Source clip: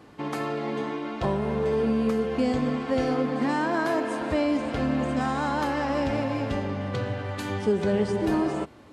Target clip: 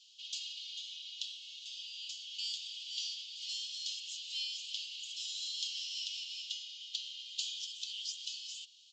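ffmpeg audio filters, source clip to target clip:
-af "afreqshift=110,asuperpass=centerf=6000:order=20:qfactor=0.75,aresample=16000,aresample=44100,volume=6.5dB"

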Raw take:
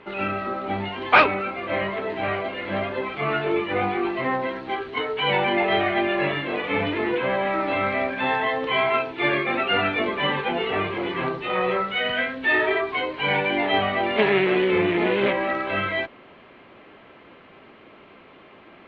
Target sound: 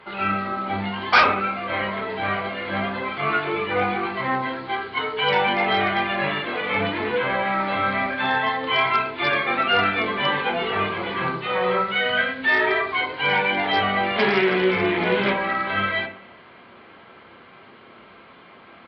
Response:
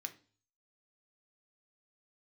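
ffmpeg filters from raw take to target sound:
-filter_complex "[0:a]highshelf=f=3.8k:g=2.5,aresample=11025,asoftclip=type=hard:threshold=-13dB,aresample=44100[a];[1:a]atrim=start_sample=2205,asetrate=26901,aresample=44100[b];[a][b]afir=irnorm=-1:irlink=0,volume=2dB"

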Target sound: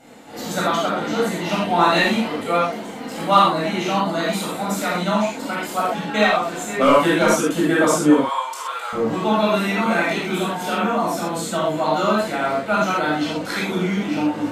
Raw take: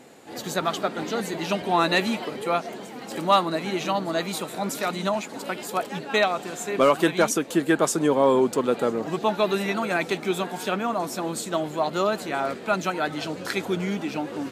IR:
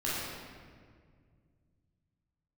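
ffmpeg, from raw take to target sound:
-filter_complex "[0:a]asettb=1/sr,asplit=3[a][b][c];[a]atrim=end=8.164[d];[b]atrim=start=8.16:end=8.93,asetpts=PTS-STARTPTS,afade=t=in:d=0.004:c=qsin,afade=t=out:st=0.766:d=0.004:c=qsin,highpass=f=930:w=0.5412,highpass=f=930:w=1.3066[e];[c]atrim=start=8.926[f];[d][e]acrossfade=d=0.004:c1=hsin:c2=qsin[g];[g][f]acrossfade=d=0.004:c1=qsin:c2=hsin[h];[1:a]atrim=start_sample=2205,atrim=end_sample=4410,asetrate=32634,aresample=44100[i];[h][i]afir=irnorm=-1:irlink=0,volume=-1.5dB"

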